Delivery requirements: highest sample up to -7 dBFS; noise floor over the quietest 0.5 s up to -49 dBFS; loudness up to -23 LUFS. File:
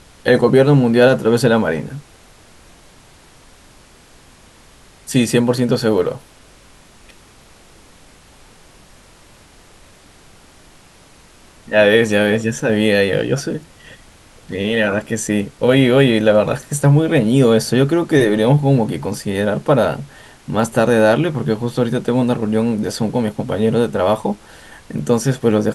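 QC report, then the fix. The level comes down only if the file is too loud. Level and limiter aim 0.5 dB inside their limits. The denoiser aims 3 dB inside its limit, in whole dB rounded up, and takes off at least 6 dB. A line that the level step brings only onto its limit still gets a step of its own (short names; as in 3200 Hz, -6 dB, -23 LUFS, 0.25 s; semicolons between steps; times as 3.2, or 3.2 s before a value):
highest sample -1.5 dBFS: fail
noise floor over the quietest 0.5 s -46 dBFS: fail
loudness -16.0 LUFS: fail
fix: gain -7.5 dB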